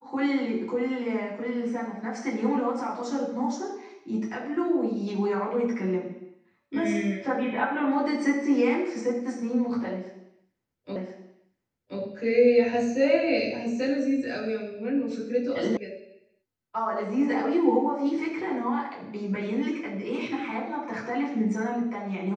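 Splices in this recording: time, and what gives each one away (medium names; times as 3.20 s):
10.96 s: repeat of the last 1.03 s
15.77 s: sound stops dead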